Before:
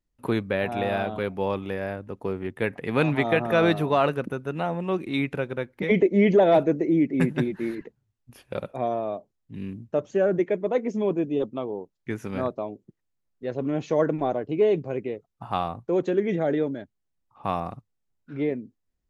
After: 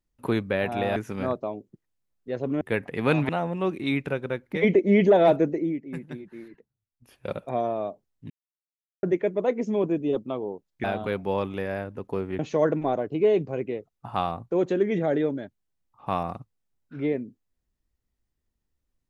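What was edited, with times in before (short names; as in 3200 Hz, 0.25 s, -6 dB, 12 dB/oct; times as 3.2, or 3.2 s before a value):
0.96–2.51 swap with 12.11–13.76
3.19–4.56 cut
6.71–8.6 dip -13 dB, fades 0.37 s
9.57–10.3 mute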